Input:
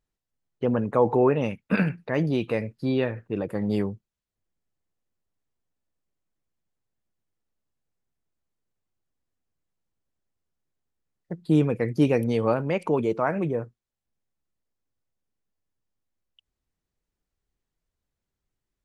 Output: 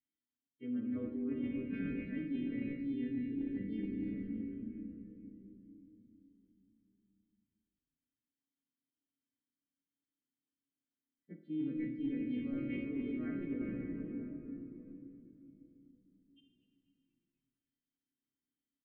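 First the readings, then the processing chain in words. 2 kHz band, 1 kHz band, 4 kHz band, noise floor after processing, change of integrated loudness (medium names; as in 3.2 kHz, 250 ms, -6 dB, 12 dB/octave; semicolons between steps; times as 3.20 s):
-17.0 dB, under -30 dB, under -15 dB, under -85 dBFS, -14.5 dB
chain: partials quantised in pitch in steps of 2 st; vowel filter i; distance through air 440 m; on a send: frequency-shifting echo 242 ms, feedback 58%, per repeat -150 Hz, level -21.5 dB; on the sum: simulated room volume 170 m³, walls hard, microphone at 0.42 m; time-frequency box 2.92–4.07 s, 510–1600 Hz -7 dB; reverse; compression 6:1, threshold -39 dBFS, peak gain reduction 17 dB; reverse; trim +3.5 dB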